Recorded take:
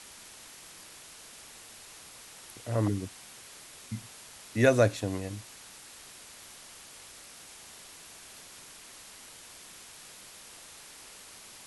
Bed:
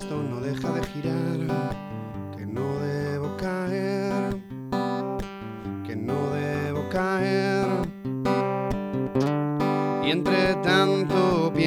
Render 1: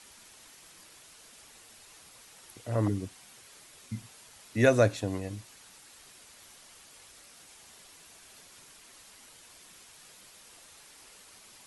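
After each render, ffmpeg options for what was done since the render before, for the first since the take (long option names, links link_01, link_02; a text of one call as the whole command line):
ffmpeg -i in.wav -af "afftdn=noise_reduction=6:noise_floor=-50" out.wav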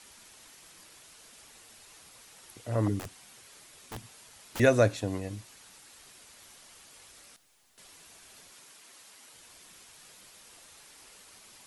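ffmpeg -i in.wav -filter_complex "[0:a]asettb=1/sr,asplit=3[link_01][link_02][link_03];[link_01]atrim=end=2.994[link_04];[link_02]atrim=start=2.99:end=4.6,asetpts=PTS-STARTPTS,afade=type=in:duration=0.004:curve=qsin,afade=type=out:start_time=1.606:duration=0.004:curve=qsin,aeval=exprs='(mod(47.3*val(0)+1,2)-1)/47.3':channel_layout=same[link_05];[link_03]atrim=start=4.596[link_06];[link_04][link_05]acrossfade=duration=0.004:curve1=hsin:curve2=qsin[link_07];[link_07][link_06]acrossfade=duration=0.004:curve1=qsin:curve2=hsin,asettb=1/sr,asplit=3[link_08][link_09][link_10];[link_08]atrim=end=7.364[link_11];[link_09]atrim=start=7.36:end=7.78,asetpts=PTS-STARTPTS,afade=type=in:duration=0.004:curve=qsin,afade=type=out:start_time=0.416:duration=0.004:curve=qsin,aeval=exprs='(tanh(2000*val(0)+0.6)-tanh(0.6))/2000':channel_layout=same[link_12];[link_10]atrim=start=7.776[link_13];[link_11][link_12]acrossfade=duration=0.004:curve1=hsin:curve2=qsin[link_14];[link_14][link_13]acrossfade=duration=0.004:curve1=qsin:curve2=hsin,asettb=1/sr,asplit=3[link_15][link_16][link_17];[link_15]atrim=end=8.534[link_18];[link_16]atrim=start=8.53:end=9.34,asetpts=PTS-STARTPTS,afade=type=in:duration=0.004:curve=qsin,afade=type=out:start_time=0.806:duration=0.004:curve=qsin,highpass=frequency=260:poles=1[link_19];[link_17]atrim=start=9.336[link_20];[link_18][link_19]acrossfade=duration=0.004:curve1=hsin:curve2=qsin[link_21];[link_21][link_20]acrossfade=duration=0.004:curve1=qsin:curve2=hsin" out.wav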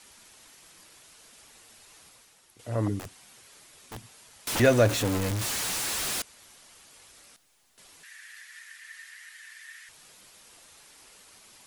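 ffmpeg -i in.wav -filter_complex "[0:a]asettb=1/sr,asplit=3[link_01][link_02][link_03];[link_01]atrim=end=4.474[link_04];[link_02]atrim=start=4.47:end=6.22,asetpts=PTS-STARTPTS,afade=type=in:duration=0.004:curve=qsin,afade=type=out:start_time=1.746:duration=0.004:curve=qsin,aeval=exprs='val(0)+0.5*0.0562*sgn(val(0))':channel_layout=same[link_05];[link_03]atrim=start=6.216[link_06];[link_04][link_05]acrossfade=duration=0.004:curve1=hsin:curve2=qsin[link_07];[link_07][link_06]acrossfade=duration=0.004:curve1=qsin:curve2=hsin,asettb=1/sr,asplit=3[link_08][link_09][link_10];[link_08]atrim=end=8.034[link_11];[link_09]atrim=start=8.03:end=9.89,asetpts=PTS-STARTPTS,afade=type=in:duration=0.004:curve=qsin,afade=type=out:start_time=1.856:duration=0.004:curve=qsin,highpass=frequency=1800:width_type=q:width=15[link_12];[link_10]atrim=start=9.886[link_13];[link_11][link_12]acrossfade=duration=0.004:curve1=hsin:curve2=qsin[link_14];[link_14][link_13]acrossfade=duration=0.004:curve1=qsin:curve2=hsin,asplit=2[link_15][link_16];[link_15]atrim=end=2.59,asetpts=PTS-STARTPTS,afade=type=out:start_time=2.07:duration=0.52:curve=qua:silence=0.375837[link_17];[link_16]atrim=start=2.59,asetpts=PTS-STARTPTS,afade=type=in:duration=0.004:curve=hsin:silence=0.375837[link_18];[link_17][link_18]concat=n=2:v=0:a=1" out.wav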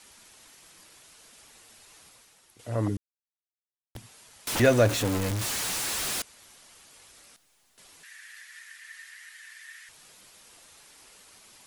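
ffmpeg -i in.wav -filter_complex "[0:a]asplit=3[link_01][link_02][link_03];[link_01]atrim=end=2.97,asetpts=PTS-STARTPTS,afade=type=out:start_time=2.966:duration=0.004:curve=hsin[link_04];[link_02]atrim=start=2.97:end=3.95,asetpts=PTS-STARTPTS,volume=0[link_05];[link_03]atrim=start=3.95,asetpts=PTS-STARTPTS,afade=type=in:duration=0.004:curve=hsin[link_06];[link_04][link_05][link_06]concat=n=3:v=0:a=1" out.wav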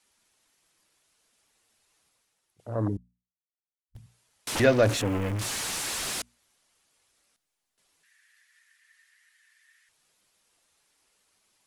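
ffmpeg -i in.wav -af "afwtdn=0.0126,bandreject=frequency=60:width_type=h:width=6,bandreject=frequency=120:width_type=h:width=6,bandreject=frequency=180:width_type=h:width=6,bandreject=frequency=240:width_type=h:width=6" out.wav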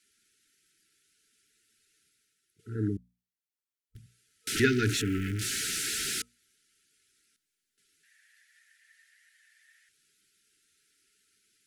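ffmpeg -i in.wav -af "lowshelf=frequency=88:gain=-6.5,afftfilt=real='re*(1-between(b*sr/4096,460,1300))':imag='im*(1-between(b*sr/4096,460,1300))':win_size=4096:overlap=0.75" out.wav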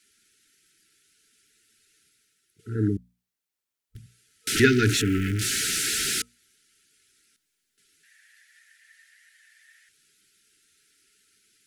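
ffmpeg -i in.wav -af "volume=6dB" out.wav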